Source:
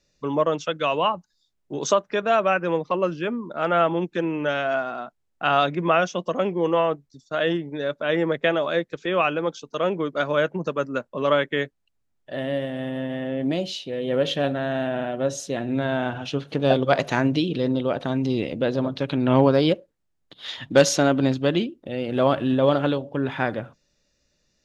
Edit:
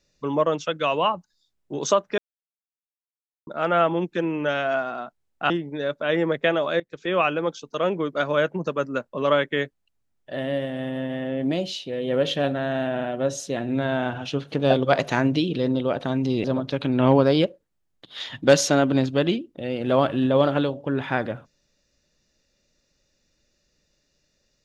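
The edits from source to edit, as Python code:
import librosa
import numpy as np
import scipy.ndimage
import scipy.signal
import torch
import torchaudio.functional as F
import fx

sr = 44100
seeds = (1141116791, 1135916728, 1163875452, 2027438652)

y = fx.edit(x, sr, fx.silence(start_s=2.18, length_s=1.29),
    fx.cut(start_s=5.5, length_s=2.0),
    fx.fade_in_from(start_s=8.8, length_s=0.3, floor_db=-17.5),
    fx.cut(start_s=18.44, length_s=0.28), tone=tone)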